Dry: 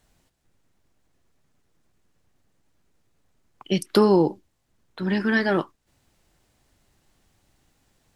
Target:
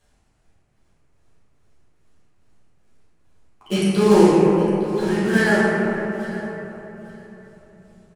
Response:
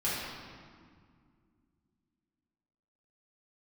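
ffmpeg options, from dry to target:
-filter_complex "[0:a]aecho=1:1:858|1716:0.141|0.0283,acrusher=bits=3:mode=log:mix=0:aa=0.000001,tremolo=f=2.4:d=0.66[s0];[1:a]atrim=start_sample=2205,asetrate=22491,aresample=44100[s1];[s0][s1]afir=irnorm=-1:irlink=0,volume=0.501"

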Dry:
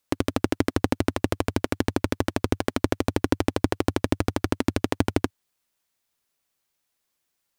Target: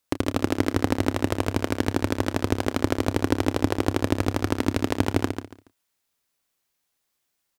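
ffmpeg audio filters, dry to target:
-filter_complex "[0:a]asplit=2[s0][s1];[s1]adelay=30,volume=0.211[s2];[s0][s2]amix=inputs=2:normalize=0,aecho=1:1:141|282|423:0.422|0.101|0.0243"

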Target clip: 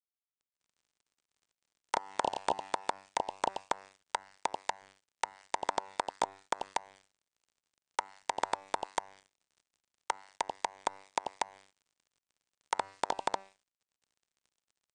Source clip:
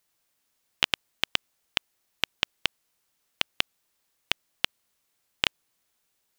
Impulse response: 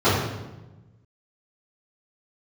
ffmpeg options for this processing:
-filter_complex "[0:a]asuperstop=centerf=3800:order=20:qfactor=0.93,lowshelf=f=240:g=-3,aecho=1:1:131.2|169.1|233.2:0.891|0.355|1,acrossover=split=2300|6600[s0][s1][s2];[s0]acompressor=threshold=0.0112:ratio=4[s3];[s1]acompressor=threshold=0.00708:ratio=4[s4];[s2]acompressor=threshold=0.00282:ratio=4[s5];[s3][s4][s5]amix=inputs=3:normalize=0,aeval=exprs='(mod(13.3*val(0)+1,2)-1)/13.3':c=same,tiltshelf=f=710:g=-10,bandreject=f=226.8:t=h:w=4,bandreject=f=453.6:t=h:w=4,bandreject=f=680.4:t=h:w=4,bandreject=f=907.2:t=h:w=4,bandreject=f=1134:t=h:w=4,bandreject=f=1360.8:t=h:w=4,bandreject=f=1587.6:t=h:w=4,bandreject=f=1814.4:t=h:w=4,bandreject=f=2041.2:t=h:w=4,bandreject=f=2268:t=h:w=4,bandreject=f=2494.8:t=h:w=4,bandreject=f=2721.6:t=h:w=4,bandreject=f=2948.4:t=h:w=4,bandreject=f=3175.2:t=h:w=4,bandreject=f=3402:t=h:w=4,bandreject=f=3628.8:t=h:w=4,bandreject=f=3855.6:t=h:w=4,bandreject=f=4082.4:t=h:w=4,bandreject=f=4309.2:t=h:w=4,bandreject=f=4536:t=h:w=4,bandreject=f=4762.8:t=h:w=4,bandreject=f=4989.6:t=h:w=4,acrusher=bits=7:mix=0:aa=0.5,acrossover=split=3000[s6][s7];[s7]acompressor=threshold=0.0126:ratio=4:attack=1:release=60[s8];[s6][s8]amix=inputs=2:normalize=0,asetrate=18846,aresample=44100,volume=1.41"

